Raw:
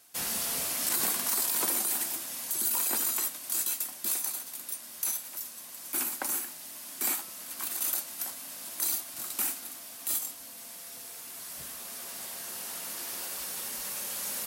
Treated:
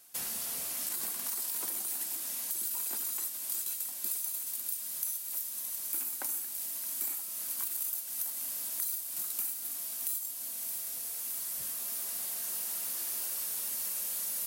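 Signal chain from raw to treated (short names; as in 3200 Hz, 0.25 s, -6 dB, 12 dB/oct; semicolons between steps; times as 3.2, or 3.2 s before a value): high shelf 7600 Hz +7 dB, from 4.11 s +12 dB; compressor 5:1, threshold -30 dBFS, peak gain reduction 12.5 dB; thin delay 0.62 s, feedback 84%, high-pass 2600 Hz, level -9 dB; gain -3.5 dB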